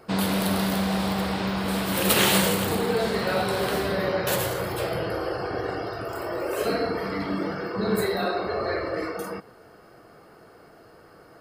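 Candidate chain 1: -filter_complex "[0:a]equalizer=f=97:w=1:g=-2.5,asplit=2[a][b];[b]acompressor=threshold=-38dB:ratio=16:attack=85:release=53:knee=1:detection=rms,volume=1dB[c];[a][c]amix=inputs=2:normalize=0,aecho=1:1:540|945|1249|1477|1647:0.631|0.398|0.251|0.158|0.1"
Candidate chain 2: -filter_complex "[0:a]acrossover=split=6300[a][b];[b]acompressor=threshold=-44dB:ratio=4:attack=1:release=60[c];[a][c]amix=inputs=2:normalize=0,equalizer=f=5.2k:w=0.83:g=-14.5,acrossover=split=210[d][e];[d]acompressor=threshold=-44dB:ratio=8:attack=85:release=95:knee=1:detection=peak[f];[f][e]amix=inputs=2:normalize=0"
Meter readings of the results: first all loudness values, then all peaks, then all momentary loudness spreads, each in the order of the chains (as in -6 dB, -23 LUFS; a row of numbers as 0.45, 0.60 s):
-21.5, -28.0 LUFS; -5.0, -8.5 dBFS; 12, 5 LU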